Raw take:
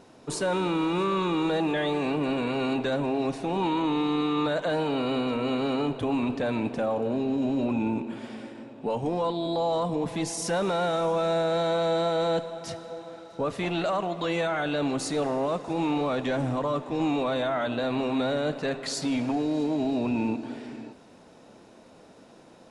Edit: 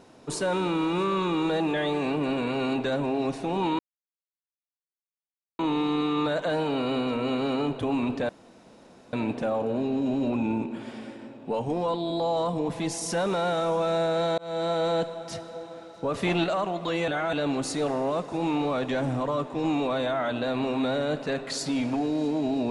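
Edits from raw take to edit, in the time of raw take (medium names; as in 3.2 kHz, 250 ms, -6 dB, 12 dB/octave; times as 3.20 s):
3.79 s: insert silence 1.80 s
6.49 s: insert room tone 0.84 s
11.74–12.19 s: fade in equal-power
13.50–13.80 s: gain +4 dB
14.44–14.69 s: reverse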